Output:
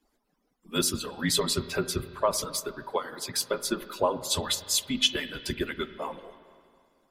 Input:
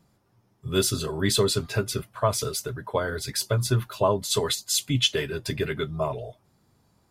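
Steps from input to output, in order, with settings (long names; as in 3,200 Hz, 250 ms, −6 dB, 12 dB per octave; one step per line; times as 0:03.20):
harmonic-percussive split with one part muted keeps percussive
0:02.88–0:03.43: high-pass filter 310 Hz → 130 Hz 24 dB per octave
frequency shifter −28 Hz
spring reverb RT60 2.2 s, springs 35/39/47 ms, chirp 25 ms, DRR 12.5 dB
level −1 dB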